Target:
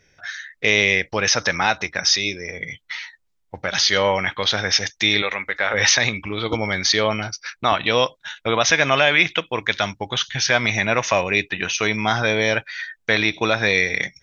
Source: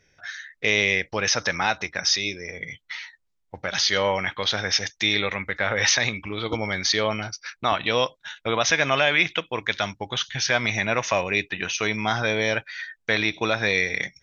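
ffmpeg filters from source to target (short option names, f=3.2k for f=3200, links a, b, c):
-filter_complex "[0:a]asettb=1/sr,asplit=3[a][b][c];[a]atrim=end=5.224[d];[b]atrim=start=5.22:end=5.74,asetpts=PTS-STARTPTS,afade=t=in:d=0.004:c=qsin,afade=t=out:st=0.516:d=0.004:c=qsin,equalizer=f=110:t=o:w=2.3:g=-14.5[e];[c]atrim=start=5.736[f];[d][e]acrossfade=d=0.004:c1=hsin:c2=qsin[g];[g][f]acrossfade=d=0.004:c1=qsin:c2=hsin,volume=4dB"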